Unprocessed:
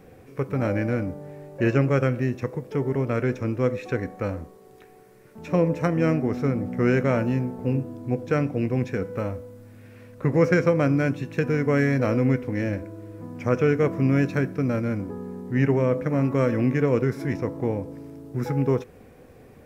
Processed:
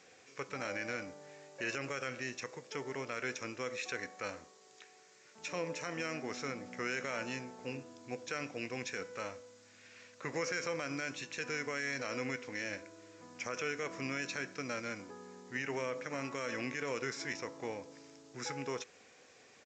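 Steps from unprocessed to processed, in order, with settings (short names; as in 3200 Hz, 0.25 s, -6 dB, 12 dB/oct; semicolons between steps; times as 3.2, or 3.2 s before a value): differentiator; limiter -35.5 dBFS, peak gain reduction 12 dB; downsampling 16000 Hz; gain +10 dB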